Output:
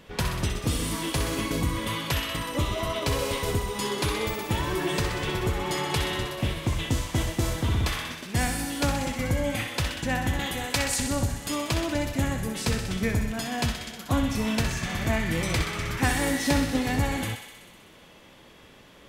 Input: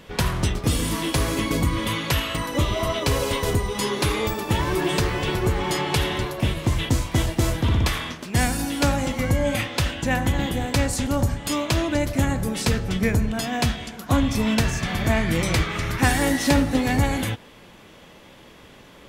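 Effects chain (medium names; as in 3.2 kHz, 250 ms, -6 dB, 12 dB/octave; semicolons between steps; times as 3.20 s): 10.39–11.00 s: tilt shelf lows -5.5 dB, about 640 Hz; on a send: thinning echo 63 ms, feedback 77%, high-pass 800 Hz, level -7 dB; on the sum: trim -5 dB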